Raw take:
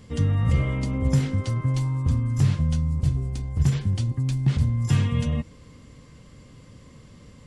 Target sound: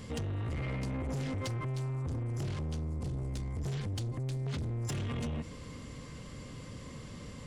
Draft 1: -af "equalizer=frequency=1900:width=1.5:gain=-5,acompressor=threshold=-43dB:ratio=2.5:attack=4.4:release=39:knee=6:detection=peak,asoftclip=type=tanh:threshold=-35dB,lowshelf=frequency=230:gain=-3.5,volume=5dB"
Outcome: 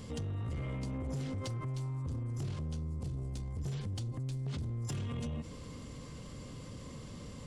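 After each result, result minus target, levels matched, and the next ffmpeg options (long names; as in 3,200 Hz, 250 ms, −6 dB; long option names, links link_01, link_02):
downward compressor: peak gain reduction +5 dB; 2,000 Hz band −4.5 dB
-af "equalizer=frequency=1900:width=1.5:gain=-5,acompressor=threshold=-34.5dB:ratio=2.5:attack=4.4:release=39:knee=6:detection=peak,asoftclip=type=tanh:threshold=-35dB,lowshelf=frequency=230:gain=-3.5,volume=5dB"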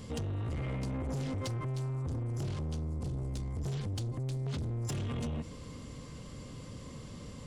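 2,000 Hz band −3.5 dB
-af "acompressor=threshold=-34.5dB:ratio=2.5:attack=4.4:release=39:knee=6:detection=peak,asoftclip=type=tanh:threshold=-35dB,lowshelf=frequency=230:gain=-3.5,volume=5dB"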